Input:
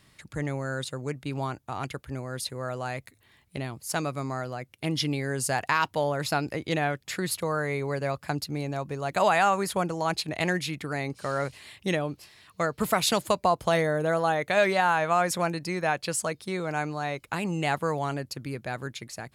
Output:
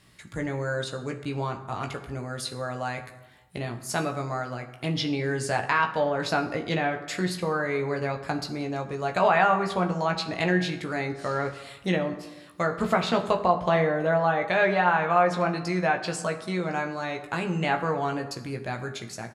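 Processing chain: low-pass that closes with the level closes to 2.8 kHz, closed at -21 dBFS; doubling 17 ms -6 dB; plate-style reverb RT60 1.1 s, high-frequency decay 0.55×, DRR 7.5 dB

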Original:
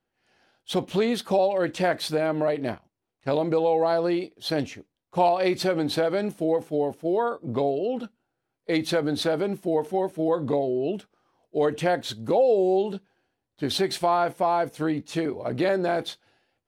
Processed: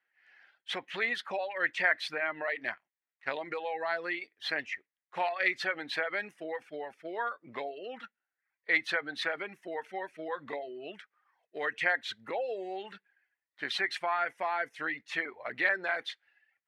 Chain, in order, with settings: reverb removal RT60 0.66 s; in parallel at -2.5 dB: compression, threshold -30 dBFS, peak gain reduction 13.5 dB; on the sum: band-pass filter 1.9 kHz, Q 4.5; trim +8 dB

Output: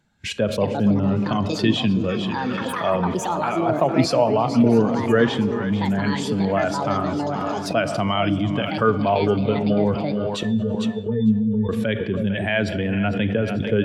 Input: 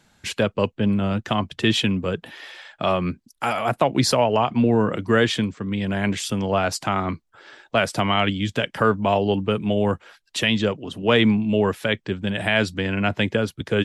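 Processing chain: 10.43–11.69 s: pitch-class resonator A, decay 0.18 s; on a send: two-band feedback delay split 530 Hz, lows 319 ms, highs 451 ms, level -9.5 dB; on the sum: ever faster or slower copies 335 ms, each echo +6 st, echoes 2, each echo -6 dB; Schroeder reverb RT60 1.5 s, combs from 27 ms, DRR 13 dB; in parallel at +0.5 dB: compressor with a negative ratio -31 dBFS, ratio -1; on the sum: spectral contrast expander 1.5:1; trim -1.5 dB

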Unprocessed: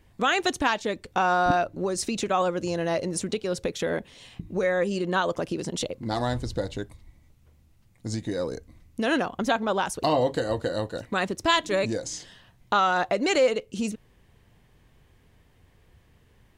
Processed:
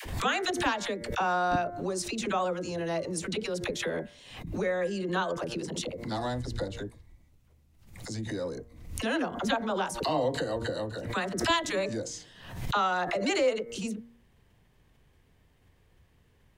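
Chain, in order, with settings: de-hum 117 Hz, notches 19; phase dispersion lows, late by 56 ms, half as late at 520 Hz; swell ahead of each attack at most 71 dB/s; trim -5 dB

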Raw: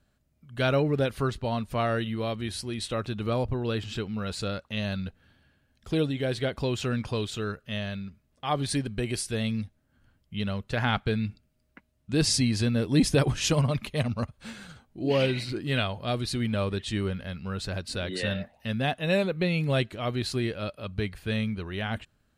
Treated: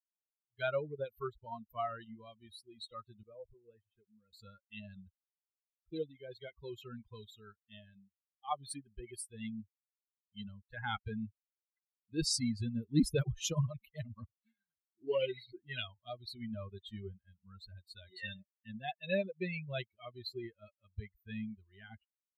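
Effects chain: expander on every frequency bin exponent 3; 3.23–4.33 s: cascade formant filter e; trim -3.5 dB

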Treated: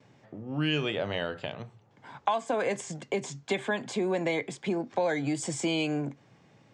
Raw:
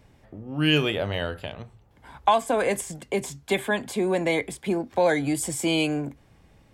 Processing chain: gate with hold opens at -50 dBFS; elliptic band-pass 120–6900 Hz, stop band 40 dB; compression 2.5:1, threshold -27 dBFS, peak gain reduction 8.5 dB

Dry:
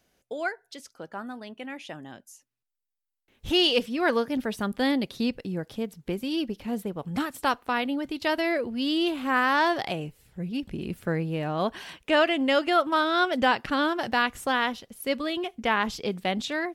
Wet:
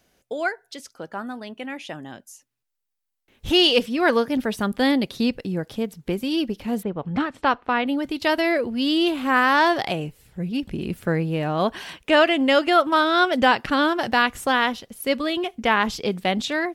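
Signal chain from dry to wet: 6.83–7.87 s: low-pass 3 kHz 12 dB/octave; trim +5 dB

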